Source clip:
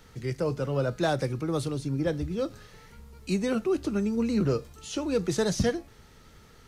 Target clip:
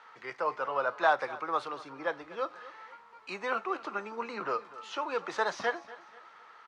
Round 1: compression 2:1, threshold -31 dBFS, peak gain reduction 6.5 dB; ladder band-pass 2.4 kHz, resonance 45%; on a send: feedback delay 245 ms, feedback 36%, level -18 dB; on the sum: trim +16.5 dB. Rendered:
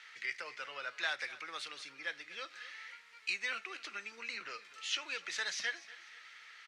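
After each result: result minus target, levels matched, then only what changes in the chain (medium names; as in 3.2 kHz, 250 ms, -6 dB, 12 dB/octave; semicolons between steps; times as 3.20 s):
1 kHz band -10.0 dB; compression: peak gain reduction +6.5 dB
change: ladder band-pass 1.2 kHz, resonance 45%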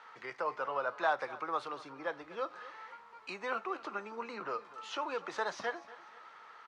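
compression: peak gain reduction +6.5 dB
remove: compression 2:1, threshold -31 dBFS, peak gain reduction 6.5 dB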